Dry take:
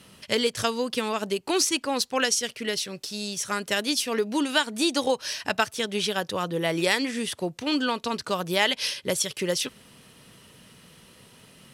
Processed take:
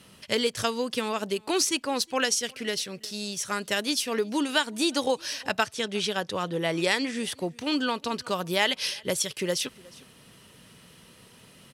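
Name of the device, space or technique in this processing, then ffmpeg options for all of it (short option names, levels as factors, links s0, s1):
ducked delay: -filter_complex "[0:a]asplit=3[s0][s1][s2];[s1]adelay=361,volume=0.422[s3];[s2]apad=whole_len=533345[s4];[s3][s4]sidechaincompress=threshold=0.00891:ratio=10:attack=6.3:release=786[s5];[s0][s5]amix=inputs=2:normalize=0,asettb=1/sr,asplit=3[s6][s7][s8];[s6]atrim=end=5.634[s9];[s7]atrim=start=5.63:end=7.23,asetpts=PTS-STARTPTS,afade=t=in:d=0.004:c=qsin,afade=t=out:st=1.596:d=0.004:c=qsin,lowpass=10000[s10];[s8]atrim=start=7.226[s11];[s9][s10]acrossfade=d=0.004:c1=hsin:c2=qsin[s12];[s12][s11]acrossfade=d=0.004:c1=qsin:c2=hsin,volume=0.841"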